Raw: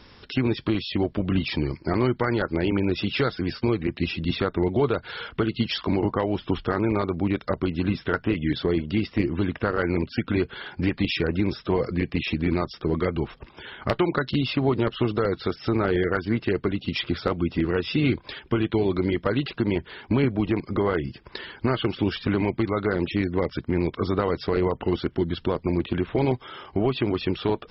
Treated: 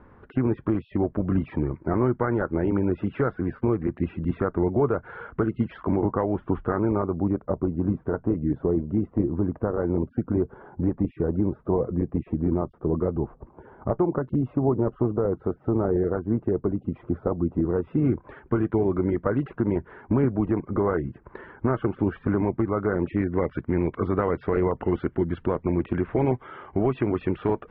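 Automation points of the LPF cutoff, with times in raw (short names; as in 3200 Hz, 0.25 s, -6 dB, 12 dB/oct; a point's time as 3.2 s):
LPF 24 dB/oct
6.72 s 1500 Hz
7.47 s 1000 Hz
17.61 s 1000 Hz
18.42 s 1500 Hz
22.85 s 1500 Hz
23.49 s 2000 Hz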